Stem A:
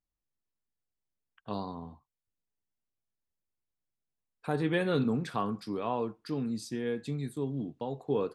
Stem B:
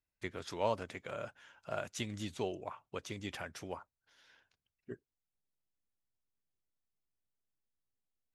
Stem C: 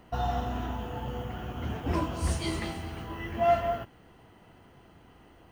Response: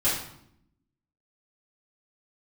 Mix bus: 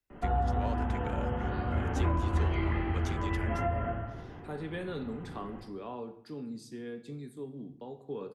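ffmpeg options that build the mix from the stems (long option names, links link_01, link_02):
-filter_complex "[0:a]volume=-10dB,asplit=3[link_01][link_02][link_03];[link_02]volume=-19dB[link_04];[1:a]volume=2dB[link_05];[2:a]lowpass=frequency=2300:width=0.5412,lowpass=frequency=2300:width=1.3066,adelay=100,volume=-3dB,asplit=2[link_06][link_07];[link_07]volume=-3.5dB[link_08];[link_03]apad=whole_len=372363[link_09];[link_05][link_09]sidechaincompress=threshold=-52dB:ratio=8:attack=16:release=621[link_10];[3:a]atrim=start_sample=2205[link_11];[link_04][link_08]amix=inputs=2:normalize=0[link_12];[link_12][link_11]afir=irnorm=-1:irlink=0[link_13];[link_01][link_10][link_06][link_13]amix=inputs=4:normalize=0,equalizer=frequency=400:width_type=o:width=0.45:gain=4.5,acrossover=split=90|220|640[link_14][link_15][link_16][link_17];[link_14]acompressor=threshold=-28dB:ratio=4[link_18];[link_15]acompressor=threshold=-41dB:ratio=4[link_19];[link_16]acompressor=threshold=-39dB:ratio=4[link_20];[link_17]acompressor=threshold=-37dB:ratio=4[link_21];[link_18][link_19][link_20][link_21]amix=inputs=4:normalize=0"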